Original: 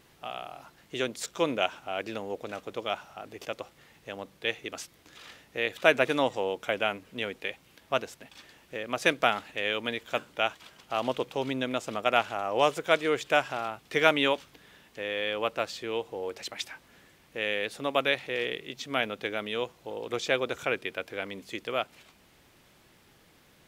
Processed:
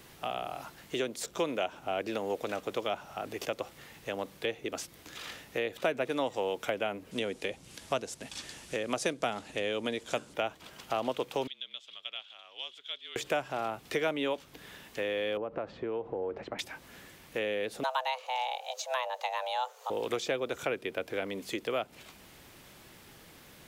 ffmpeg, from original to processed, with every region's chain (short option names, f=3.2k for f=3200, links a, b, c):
-filter_complex "[0:a]asettb=1/sr,asplit=3[a][b][c];[a]atrim=end=7.114[d];[b]atrim=start=7.11:end=10.34,asetpts=PTS-STARTPTS,afade=t=in:d=0.004:c=qsin,afade=t=out:st=3.226:d=0.004:c=qsin,lowpass=f=10k:w=0.5412,lowpass=f=10k:w=1.3066,bass=f=250:g=4,treble=f=4k:g=10[e];[c]atrim=start=10.336[f];[d][e]acrossfade=d=0.004:c1=hsin:c2=qsin[g];[g][f]acrossfade=d=0.004:c1=qsin:c2=hsin,asettb=1/sr,asplit=3[h][i][j];[h]atrim=end=11.474[k];[i]atrim=start=11.47:end=13.16,asetpts=PTS-STARTPTS,afade=t=in:d=0.004:c=qsin,afade=t=out:st=1.686:d=0.004:c=qsin,bandpass=f=3.4k:t=q:w=9.7,afreqshift=-40[l];[j]atrim=start=13.156[m];[k][l]acrossfade=d=0.004:c1=hsin:c2=qsin[n];[n][m]acrossfade=d=0.004:c1=qsin:c2=hsin,asettb=1/sr,asplit=3[o][p][q];[o]atrim=end=15.374[r];[p]atrim=start=15.37:end=16.59,asetpts=PTS-STARTPTS,afade=t=in:d=0.004:c=qsin,afade=t=out:st=1.216:d=0.004:c=qsin,tiltshelf=f=820:g=4.5,acompressor=threshold=-34dB:ratio=6:attack=3.2:release=140:knee=1:detection=peak,lowpass=1.4k[s];[q]atrim=start=16.586[t];[r][s]acrossfade=d=0.004:c1=hsin:c2=qsin[u];[u][t]acrossfade=d=0.004:c1=qsin:c2=hsin,asettb=1/sr,asplit=3[v][w][x];[v]atrim=end=17.834[y];[w]atrim=start=17.83:end=19.9,asetpts=PTS-STARTPTS,afade=t=in:d=0.004:c=qsin,afade=t=out:st=2.066:d=0.004:c=qsin,afreqshift=380,equalizer=f=6.5k:t=o:w=0.31:g=8[z];[x]atrim=start=19.896[aa];[y][z]acrossfade=d=0.004:c1=hsin:c2=qsin[ab];[ab][aa]acrossfade=d=0.004:c1=qsin:c2=hsin,highshelf=f=8.6k:g=5,acrossover=split=240|780[ac][ad][ae];[ac]acompressor=threshold=-54dB:ratio=4[af];[ad]acompressor=threshold=-37dB:ratio=4[ag];[ae]acompressor=threshold=-43dB:ratio=4[ah];[af][ag][ah]amix=inputs=3:normalize=0,volume=5.5dB"